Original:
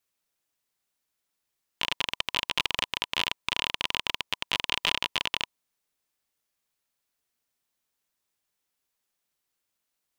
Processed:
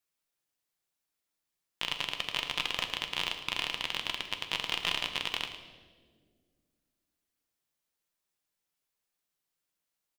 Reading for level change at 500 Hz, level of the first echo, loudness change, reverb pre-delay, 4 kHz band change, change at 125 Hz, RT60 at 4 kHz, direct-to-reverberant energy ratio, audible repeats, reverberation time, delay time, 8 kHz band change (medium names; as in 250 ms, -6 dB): -3.5 dB, -13.5 dB, -4.0 dB, 6 ms, -4.0 dB, -3.0 dB, 1.2 s, 5.0 dB, 1, 1.8 s, 110 ms, -4.0 dB